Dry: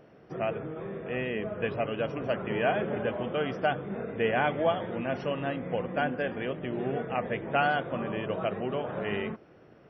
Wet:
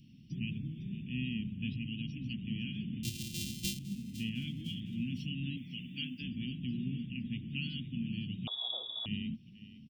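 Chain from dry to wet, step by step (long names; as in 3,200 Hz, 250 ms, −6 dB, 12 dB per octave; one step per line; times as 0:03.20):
0:03.03–0:03.79: samples sorted by size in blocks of 128 samples
Chebyshev band-stop filter 250–2,800 Hz, order 4
0:05.57–0:06.21: spectral tilt +3.5 dB per octave
speech leveller within 5 dB 2 s
repeating echo 506 ms, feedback 39%, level −16 dB
0:08.47–0:09.06: voice inversion scrambler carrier 3,600 Hz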